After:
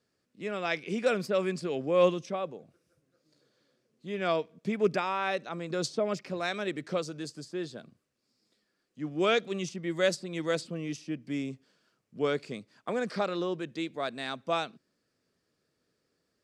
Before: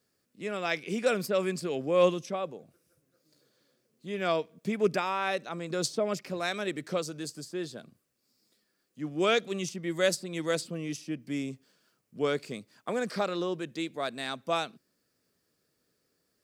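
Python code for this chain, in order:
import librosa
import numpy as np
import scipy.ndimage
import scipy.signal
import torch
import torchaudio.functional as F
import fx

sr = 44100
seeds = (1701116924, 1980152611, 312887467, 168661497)

y = fx.air_absorb(x, sr, metres=60.0)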